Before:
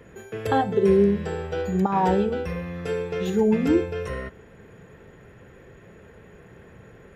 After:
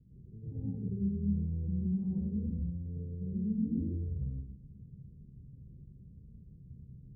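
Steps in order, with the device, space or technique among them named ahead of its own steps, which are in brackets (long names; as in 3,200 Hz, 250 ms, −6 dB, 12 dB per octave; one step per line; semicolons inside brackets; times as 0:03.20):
club heard from the street (brickwall limiter −17 dBFS, peak gain reduction 8.5 dB; low-pass filter 200 Hz 24 dB per octave; convolution reverb RT60 0.65 s, pre-delay 88 ms, DRR −7.5 dB)
level −7.5 dB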